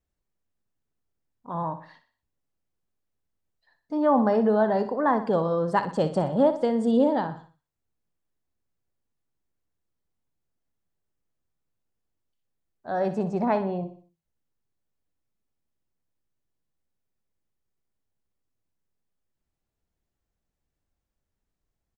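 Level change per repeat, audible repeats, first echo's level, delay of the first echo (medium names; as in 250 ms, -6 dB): -7.5 dB, 4, -11.5 dB, 61 ms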